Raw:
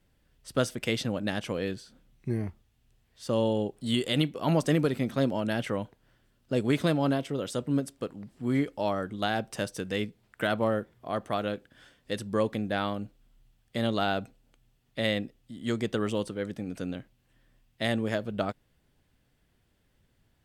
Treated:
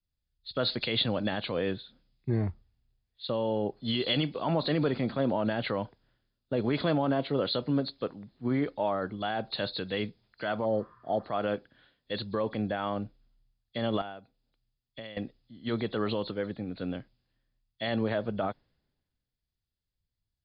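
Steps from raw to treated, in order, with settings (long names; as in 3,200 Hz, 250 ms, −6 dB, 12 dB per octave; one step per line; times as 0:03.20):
hearing-aid frequency compression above 3,300 Hz 4 to 1
dynamic equaliser 860 Hz, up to +6 dB, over −41 dBFS, Q 0.78
0:10.68–0:11.17: healed spectral selection 940–3,000 Hz after
0:14.01–0:15.17: downward compressor 10 to 1, threshold −37 dBFS, peak gain reduction 17.5 dB
brickwall limiter −21.5 dBFS, peak gain reduction 11 dB
multiband upward and downward expander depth 70%
level +1.5 dB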